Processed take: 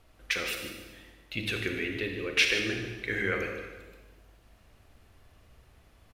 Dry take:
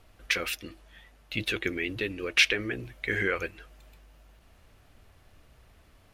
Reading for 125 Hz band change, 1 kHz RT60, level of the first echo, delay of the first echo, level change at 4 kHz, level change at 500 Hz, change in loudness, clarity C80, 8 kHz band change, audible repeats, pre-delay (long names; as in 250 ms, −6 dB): +0.5 dB, 1.2 s, −11.5 dB, 150 ms, −1.0 dB, −0.5 dB, −1.5 dB, 5.0 dB, −1.0 dB, 1, 32 ms